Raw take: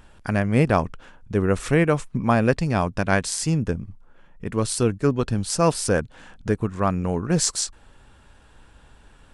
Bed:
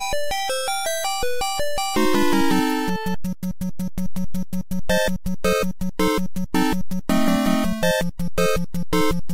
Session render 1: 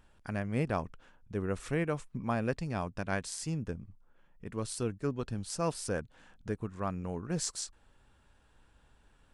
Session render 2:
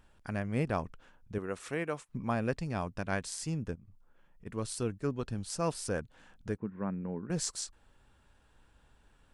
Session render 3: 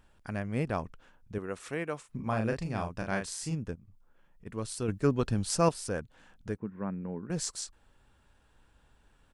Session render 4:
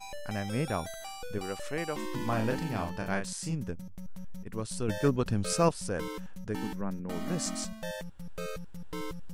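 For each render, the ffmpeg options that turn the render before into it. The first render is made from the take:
ffmpeg -i in.wav -af "volume=-13dB" out.wav
ffmpeg -i in.wav -filter_complex "[0:a]asettb=1/sr,asplit=3[link_01][link_02][link_03];[link_01]atrim=end=1.384[link_04];[link_02]atrim=start=1.38:end=2.09,asetpts=PTS-STARTPTS,afade=type=in:duration=0.004:curve=qsin,afade=type=out:start_time=0.706:duration=0.004:curve=qsin,highpass=frequency=360:poles=1[link_05];[link_03]atrim=start=2.086[link_06];[link_04][link_05]acrossfade=duration=0.004:curve1=hsin:curve2=qsin[link_07];[link_07][link_06]acrossfade=duration=0.004:curve1=qsin:curve2=hsin,asplit=3[link_08][link_09][link_10];[link_08]afade=type=out:start_time=3.74:duration=0.02[link_11];[link_09]acompressor=threshold=-50dB:ratio=10:attack=3.2:release=140:knee=1:detection=peak,afade=type=in:start_time=3.74:duration=0.02,afade=type=out:start_time=4.45:duration=0.02[link_12];[link_10]afade=type=in:start_time=4.45:duration=0.02[link_13];[link_11][link_12][link_13]amix=inputs=3:normalize=0,asettb=1/sr,asplit=3[link_14][link_15][link_16];[link_14]atrim=end=6.574[link_17];[link_15]atrim=start=6.57:end=7.3,asetpts=PTS-STARTPTS,afade=type=in:duration=0.004:curve=qsin,afade=type=out:start_time=0.726:duration=0.004:curve=qsin,highpass=160,equalizer=frequency=200:width_type=q:width=4:gain=7,equalizer=frequency=700:width_type=q:width=4:gain=-8,equalizer=frequency=1200:width_type=q:width=4:gain=-9,lowpass=frequency=2000:width=0.5412,lowpass=frequency=2000:width=1.3066[link_18];[link_16]atrim=start=7.296[link_19];[link_17][link_18]acrossfade=duration=0.004:curve1=hsin:curve2=qsin[link_20];[link_20][link_19]acrossfade=duration=0.004:curve1=qsin:curve2=hsin" out.wav
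ffmpeg -i in.wav -filter_complex "[0:a]asplit=3[link_01][link_02][link_03];[link_01]afade=type=out:start_time=2.03:duration=0.02[link_04];[link_02]asplit=2[link_05][link_06];[link_06]adelay=36,volume=-4.5dB[link_07];[link_05][link_07]amix=inputs=2:normalize=0,afade=type=in:start_time=2.03:duration=0.02,afade=type=out:start_time=3.54:duration=0.02[link_08];[link_03]afade=type=in:start_time=3.54:duration=0.02[link_09];[link_04][link_08][link_09]amix=inputs=3:normalize=0,asettb=1/sr,asplit=3[link_10][link_11][link_12];[link_10]atrim=end=4.884[link_13];[link_11]atrim=start=4.88:end=5.69,asetpts=PTS-STARTPTS,afade=type=in:duration=0.004:curve=qsin,afade=type=out:start_time=0.806:duration=0.004:curve=qsin,acontrast=88[link_14];[link_12]atrim=start=5.686[link_15];[link_13][link_14]acrossfade=duration=0.004:curve1=hsin:curve2=qsin[link_16];[link_16][link_15]acrossfade=duration=0.004:curve1=qsin:curve2=hsin" out.wav
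ffmpeg -i in.wav -i bed.wav -filter_complex "[1:a]volume=-18.5dB[link_01];[0:a][link_01]amix=inputs=2:normalize=0" out.wav

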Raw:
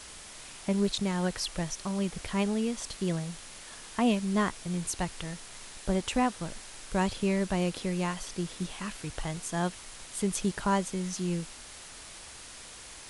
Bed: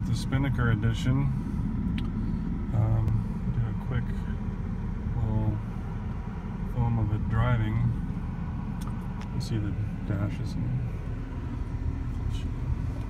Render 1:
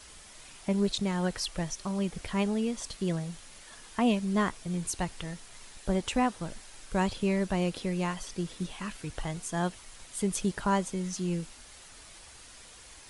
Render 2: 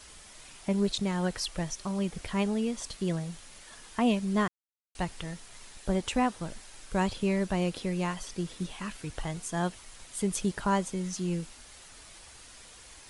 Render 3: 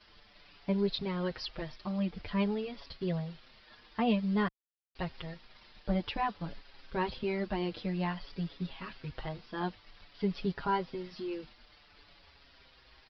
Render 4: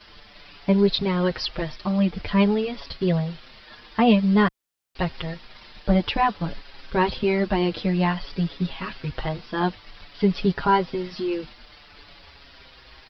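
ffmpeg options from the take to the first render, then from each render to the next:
ffmpeg -i in.wav -af "afftdn=noise_reduction=6:noise_floor=-47" out.wav
ffmpeg -i in.wav -filter_complex "[0:a]asplit=3[link_01][link_02][link_03];[link_01]atrim=end=4.48,asetpts=PTS-STARTPTS,afade=type=out:start_time=4.476:duration=0.004:curve=hsin[link_04];[link_02]atrim=start=4.48:end=4.95,asetpts=PTS-STARTPTS,volume=0[link_05];[link_03]atrim=start=4.95,asetpts=PTS-STARTPTS,afade=type=in:duration=0.004:curve=hsin[link_06];[link_04][link_05][link_06]concat=n=3:v=0:a=1" out.wav
ffmpeg -i in.wav -filter_complex "[0:a]aresample=11025,aeval=exprs='sgn(val(0))*max(abs(val(0))-0.00106,0)':channel_layout=same,aresample=44100,asplit=2[link_01][link_02];[link_02]adelay=6.2,afreqshift=-0.52[link_03];[link_01][link_03]amix=inputs=2:normalize=1" out.wav
ffmpeg -i in.wav -af "volume=11.5dB" out.wav

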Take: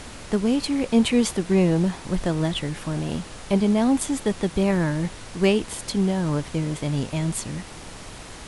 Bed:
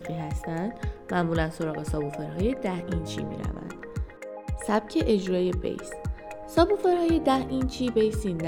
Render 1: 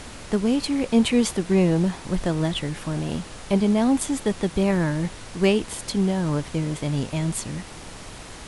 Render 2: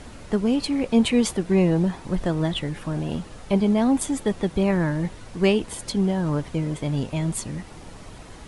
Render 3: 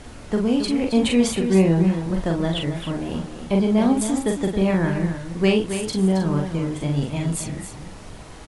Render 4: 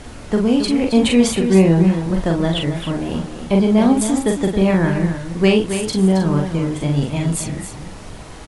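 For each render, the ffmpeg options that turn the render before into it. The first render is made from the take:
ffmpeg -i in.wav -af anull out.wav
ffmpeg -i in.wav -af "afftdn=noise_reduction=8:noise_floor=-40" out.wav
ffmpeg -i in.wav -filter_complex "[0:a]asplit=2[link_01][link_02];[link_02]adelay=42,volume=-4dB[link_03];[link_01][link_03]amix=inputs=2:normalize=0,asplit=2[link_04][link_05];[link_05]aecho=0:1:271:0.355[link_06];[link_04][link_06]amix=inputs=2:normalize=0" out.wav
ffmpeg -i in.wav -af "volume=4.5dB,alimiter=limit=-1dB:level=0:latency=1" out.wav

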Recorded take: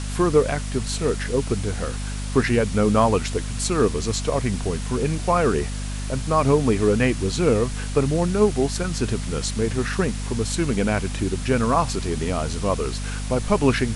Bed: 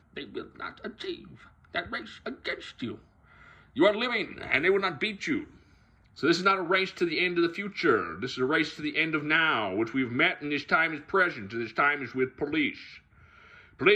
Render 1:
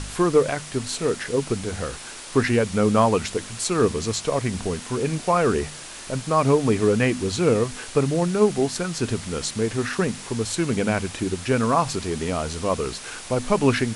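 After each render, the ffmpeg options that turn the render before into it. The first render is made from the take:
ffmpeg -i in.wav -af "bandreject=frequency=50:width_type=h:width=4,bandreject=frequency=100:width_type=h:width=4,bandreject=frequency=150:width_type=h:width=4,bandreject=frequency=200:width_type=h:width=4,bandreject=frequency=250:width_type=h:width=4" out.wav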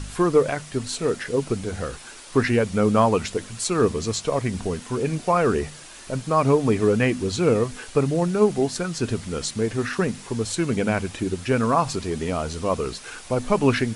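ffmpeg -i in.wav -af "afftdn=noise_reduction=6:noise_floor=-38" out.wav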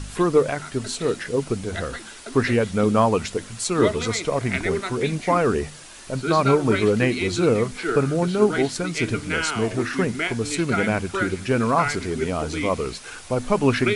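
ffmpeg -i in.wav -i bed.wav -filter_complex "[1:a]volume=-2dB[link_01];[0:a][link_01]amix=inputs=2:normalize=0" out.wav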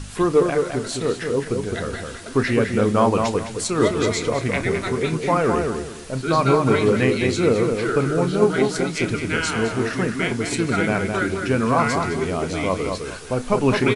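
ffmpeg -i in.wav -filter_complex "[0:a]asplit=2[link_01][link_02];[link_02]adelay=31,volume=-13dB[link_03];[link_01][link_03]amix=inputs=2:normalize=0,asplit=2[link_04][link_05];[link_05]adelay=210,lowpass=frequency=2400:poles=1,volume=-4.5dB,asplit=2[link_06][link_07];[link_07]adelay=210,lowpass=frequency=2400:poles=1,volume=0.27,asplit=2[link_08][link_09];[link_09]adelay=210,lowpass=frequency=2400:poles=1,volume=0.27,asplit=2[link_10][link_11];[link_11]adelay=210,lowpass=frequency=2400:poles=1,volume=0.27[link_12];[link_06][link_08][link_10][link_12]amix=inputs=4:normalize=0[link_13];[link_04][link_13]amix=inputs=2:normalize=0" out.wav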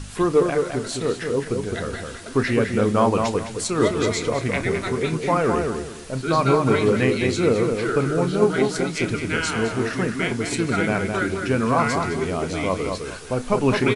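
ffmpeg -i in.wav -af "volume=-1dB" out.wav

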